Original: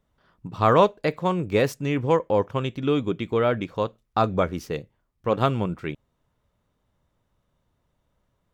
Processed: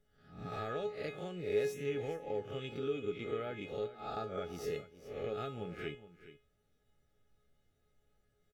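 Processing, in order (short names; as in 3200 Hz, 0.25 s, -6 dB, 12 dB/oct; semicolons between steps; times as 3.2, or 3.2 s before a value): spectral swells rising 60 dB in 0.50 s; compressor 4:1, threshold -32 dBFS, peak gain reduction 18 dB; Butterworth band-stop 1000 Hz, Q 2.3; resonator 420 Hz, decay 0.31 s, harmonics all, mix 90%; on a send: echo 0.42 s -15 dB; on the sum: gain +9.5 dB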